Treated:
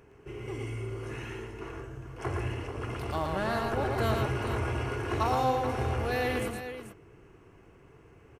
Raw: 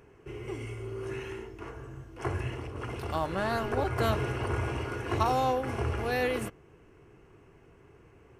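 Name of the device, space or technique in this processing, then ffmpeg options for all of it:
parallel distortion: -filter_complex "[0:a]aecho=1:1:115|437:0.631|0.299,asplit=2[link_01][link_02];[link_02]asoftclip=type=hard:threshold=-29.5dB,volume=-7.5dB[link_03];[link_01][link_03]amix=inputs=2:normalize=0,volume=-3.5dB"

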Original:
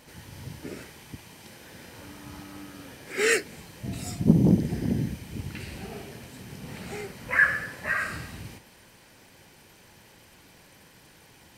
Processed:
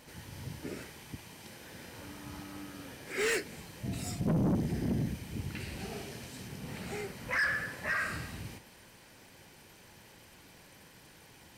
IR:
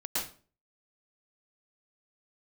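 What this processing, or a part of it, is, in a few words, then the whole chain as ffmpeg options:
saturation between pre-emphasis and de-emphasis: -filter_complex "[0:a]asettb=1/sr,asplit=3[link_01][link_02][link_03];[link_01]atrim=end=5.794[link_04];[link_02]atrim=start=5.79:end=6.48,asetpts=PTS-STARTPTS,afade=type=in:duration=0.004:curve=qsin,afade=type=out:start_time=0.686:duration=0.004:curve=qsin,equalizer=frequency=5600:width=0.66:gain=4.5[link_05];[link_03]atrim=start=6.476[link_06];[link_04][link_05]acrossfade=duration=0.004:curve1=hsin:curve2=qsin[link_07];[link_07][link_06]acrossfade=duration=0.004:curve1=qsin:curve2=hsin,highshelf=frequency=6200:gain=10.5,asoftclip=type=tanh:threshold=-23dB,highshelf=frequency=6200:gain=-10.5,volume=-2dB"

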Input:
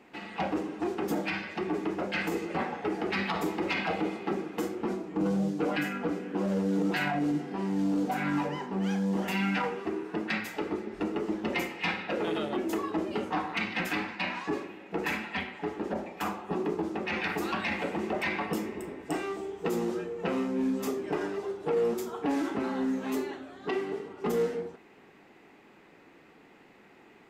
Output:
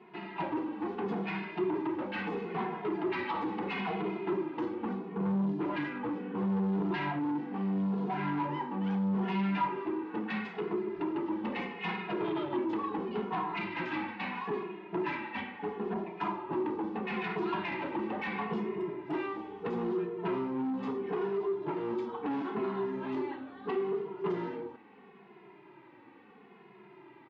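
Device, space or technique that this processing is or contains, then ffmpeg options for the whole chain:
barber-pole flanger into a guitar amplifier: -filter_complex "[0:a]asplit=2[link_01][link_02];[link_02]adelay=2.4,afreqshift=-0.75[link_03];[link_01][link_03]amix=inputs=2:normalize=1,asoftclip=type=tanh:threshold=-32dB,highpass=76,equalizer=frequency=78:width_type=q:width=4:gain=-8,equalizer=frequency=130:width_type=q:width=4:gain=7,equalizer=frequency=200:width_type=q:width=4:gain=5,equalizer=frequency=370:width_type=q:width=4:gain=8,equalizer=frequency=560:width_type=q:width=4:gain=-4,equalizer=frequency=970:width_type=q:width=4:gain=10,lowpass=frequency=3600:width=0.5412,lowpass=frequency=3600:width=1.3066"

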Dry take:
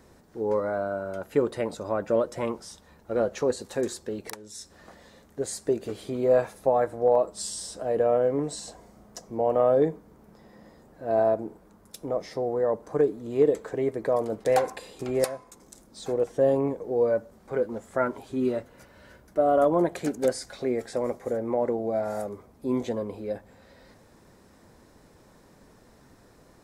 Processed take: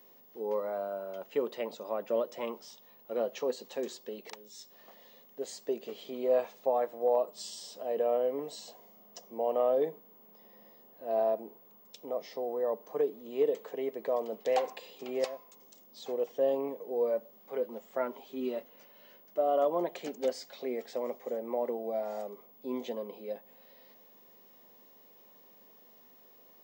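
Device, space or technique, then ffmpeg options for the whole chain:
old television with a line whistle: -af "highpass=frequency=230:width=0.5412,highpass=frequency=230:width=1.3066,equalizer=frequency=310:width_type=q:width=4:gain=-9,equalizer=frequency=1500:width_type=q:width=4:gain=-9,equalizer=frequency=3000:width_type=q:width=4:gain=8,lowpass=frequency=6600:width=0.5412,lowpass=frequency=6600:width=1.3066,aeval=exprs='val(0)+0.00282*sin(2*PI*15625*n/s)':channel_layout=same,volume=-5.5dB"

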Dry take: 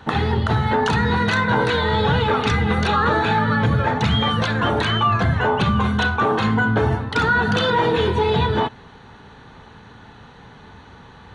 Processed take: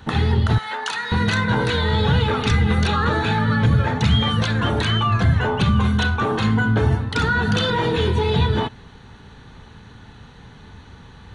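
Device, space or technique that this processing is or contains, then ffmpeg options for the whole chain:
smiley-face EQ: -filter_complex "[0:a]asettb=1/sr,asplit=3[link_01][link_02][link_03];[link_01]atrim=end=0.584[link_04];[link_02]atrim=start=0.58:end=1.12,asetpts=PTS-STARTPTS,afade=type=in:duration=0.004:curve=qsin,afade=type=out:start_time=0.536:duration=0.004:curve=qsin,highpass=890[link_05];[link_03]atrim=start=1.116[link_06];[link_04][link_05]acrossfade=duration=0.004:curve1=hsin:curve2=qsin[link_07];[link_07][link_06]acrossfade=duration=0.004:curve1=qsin:curve2=hsin,lowshelf=frequency=97:gain=7.5,equalizer=frequency=810:width_type=o:width=2.2:gain=-5,highshelf=frequency=6900:gain=6.5"

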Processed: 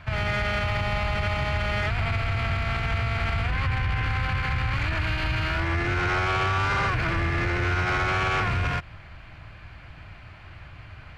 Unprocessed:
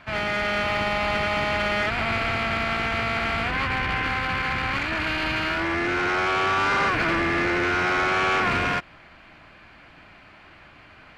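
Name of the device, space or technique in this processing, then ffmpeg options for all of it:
car stereo with a boomy subwoofer: -af "lowshelf=frequency=160:width_type=q:width=1.5:gain=12.5,alimiter=limit=-18dB:level=0:latency=1:release=59"

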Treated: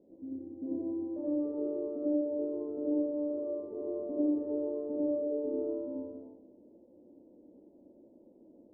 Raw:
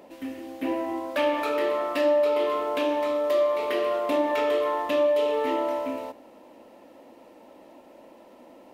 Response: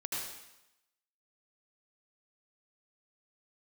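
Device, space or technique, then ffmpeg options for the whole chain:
next room: -filter_complex "[0:a]lowpass=frequency=430:width=0.5412,lowpass=frequency=430:width=1.3066[link_01];[1:a]atrim=start_sample=2205[link_02];[link_01][link_02]afir=irnorm=-1:irlink=0,volume=-5.5dB"

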